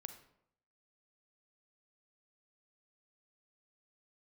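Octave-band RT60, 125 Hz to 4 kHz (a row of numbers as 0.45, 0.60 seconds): 0.80, 0.75, 0.75, 0.70, 0.60, 0.45 seconds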